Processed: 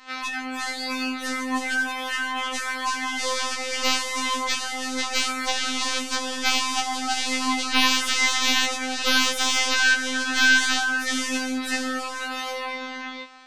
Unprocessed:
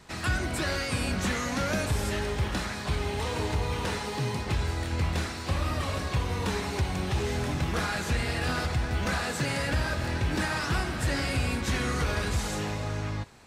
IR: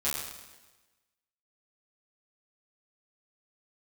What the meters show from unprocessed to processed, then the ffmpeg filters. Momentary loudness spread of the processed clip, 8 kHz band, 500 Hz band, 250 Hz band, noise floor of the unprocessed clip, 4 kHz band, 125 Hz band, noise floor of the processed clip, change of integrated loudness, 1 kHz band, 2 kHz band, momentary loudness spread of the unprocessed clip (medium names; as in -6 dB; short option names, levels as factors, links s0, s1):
10 LU, +11.0 dB, -2.0 dB, +2.5 dB, -35 dBFS, +12.5 dB, under -25 dB, -34 dBFS, +6.5 dB, +6.5 dB, +10.0 dB, 3 LU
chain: -filter_complex "[0:a]lowpass=f=8000:w=0.5412,lowpass=f=8000:w=1.3066,acontrast=41,acrossover=split=340 4900:gain=0.141 1 0.2[s0][s1][s2];[s0][s1][s2]amix=inputs=3:normalize=0,afftfilt=real='hypot(re,im)*cos(PI*b)':imag='0':win_size=2048:overlap=0.75,dynaudnorm=f=340:g=17:m=3.16,aeval=exprs='0.841*(cos(1*acos(clip(val(0)/0.841,-1,1)))-cos(1*PI/2))+0.335*(cos(3*acos(clip(val(0)/0.841,-1,1)))-cos(3*PI/2))+0.188*(cos(7*acos(clip(val(0)/0.841,-1,1)))-cos(7*PI/2))':c=same,equalizer=f=480:w=2.5:g=-9.5,afftfilt=real='re*3.46*eq(mod(b,12),0)':imag='im*3.46*eq(mod(b,12),0)':win_size=2048:overlap=0.75"